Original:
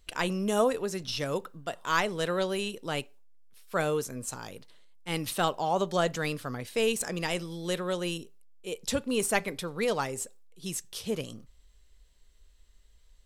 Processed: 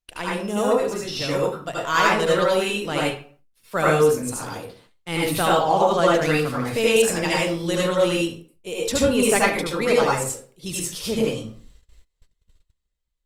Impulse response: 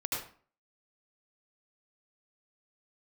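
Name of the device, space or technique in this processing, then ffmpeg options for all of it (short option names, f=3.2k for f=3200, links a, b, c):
speakerphone in a meeting room: -filter_complex "[1:a]atrim=start_sample=2205[a];[0:a][a]afir=irnorm=-1:irlink=0,dynaudnorm=f=350:g=7:m=6dB,agate=range=-23dB:threshold=-47dB:ratio=16:detection=peak" -ar 48000 -c:a libopus -b:a 32k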